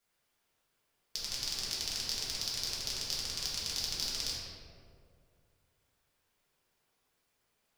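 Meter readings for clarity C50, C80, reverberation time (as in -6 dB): -0.5 dB, 1.0 dB, 2.2 s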